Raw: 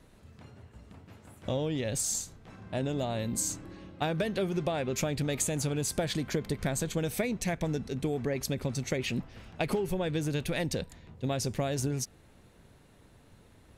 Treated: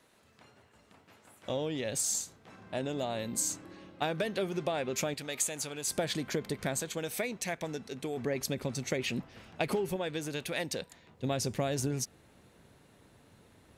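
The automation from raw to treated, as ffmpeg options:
ffmpeg -i in.wav -af "asetnsamples=nb_out_samples=441:pad=0,asendcmd='1.49 highpass f 300;5.14 highpass f 990;5.88 highpass f 240;6.8 highpass f 540;8.17 highpass f 190;9.96 highpass f 480;11.2 highpass f 120',highpass=frequency=700:poles=1" out.wav

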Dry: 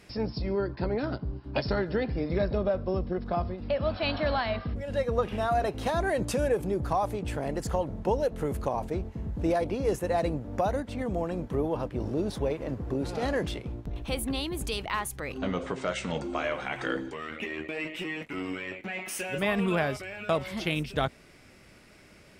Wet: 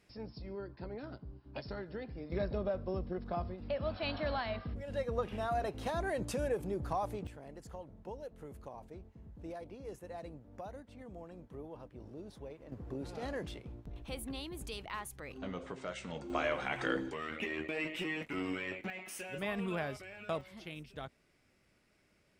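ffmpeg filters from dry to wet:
ffmpeg -i in.wav -af "asetnsamples=nb_out_samples=441:pad=0,asendcmd='2.32 volume volume -8dB;7.27 volume volume -18.5dB;12.72 volume volume -11dB;16.3 volume volume -3dB;18.9 volume volume -10dB;20.41 volume volume -17dB',volume=-14.5dB" out.wav

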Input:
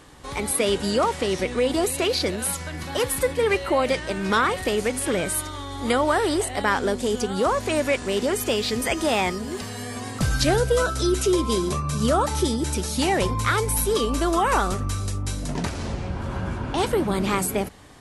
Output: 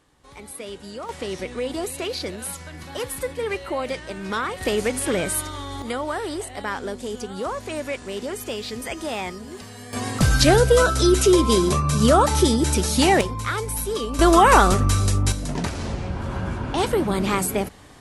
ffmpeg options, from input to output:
ffmpeg -i in.wav -af "asetnsamples=nb_out_samples=441:pad=0,asendcmd='1.09 volume volume -5.5dB;4.61 volume volume 1dB;5.82 volume volume -6.5dB;9.93 volume volume 5dB;13.21 volume volume -4dB;14.19 volume volume 7.5dB;15.32 volume volume 1dB',volume=-13.5dB" out.wav

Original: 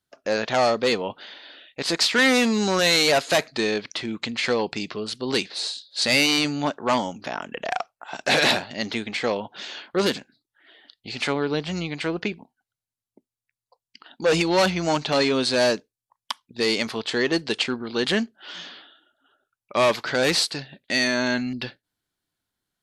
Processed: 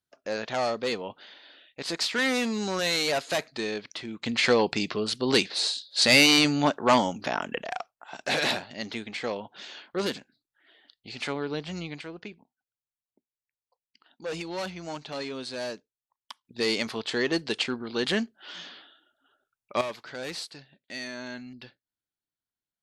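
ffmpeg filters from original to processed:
ffmpeg -i in.wav -af "asetnsamples=nb_out_samples=441:pad=0,asendcmd='4.26 volume volume 1.5dB;7.62 volume volume -7dB;12.01 volume volume -14dB;16.45 volume volume -4dB;19.81 volume volume -15dB',volume=-7.5dB" out.wav

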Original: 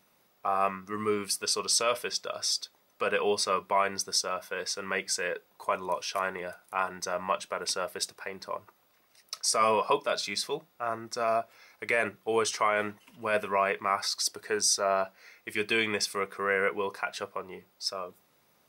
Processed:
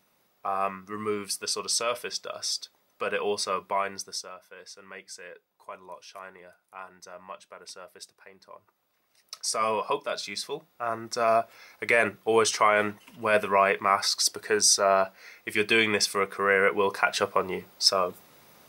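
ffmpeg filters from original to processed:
ffmpeg -i in.wav -af "volume=23dB,afade=type=out:start_time=3.71:duration=0.67:silence=0.266073,afade=type=in:start_time=8.54:duration=0.89:silence=0.298538,afade=type=in:start_time=10.48:duration=0.87:silence=0.446684,afade=type=in:start_time=16.66:duration=0.75:silence=0.473151" out.wav

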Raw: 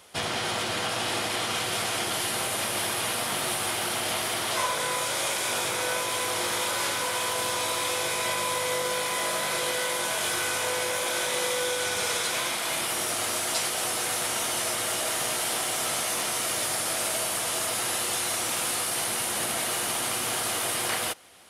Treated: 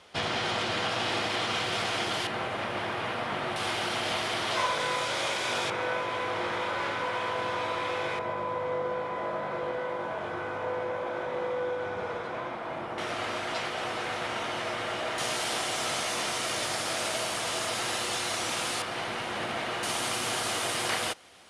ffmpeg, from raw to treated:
ffmpeg -i in.wav -af "asetnsamples=nb_out_samples=441:pad=0,asendcmd='2.27 lowpass f 2200;3.56 lowpass f 4700;5.7 lowpass f 2200;8.19 lowpass f 1100;12.98 lowpass f 2700;15.18 lowpass f 6200;18.82 lowpass f 2900;19.83 lowpass f 7300',lowpass=4700" out.wav

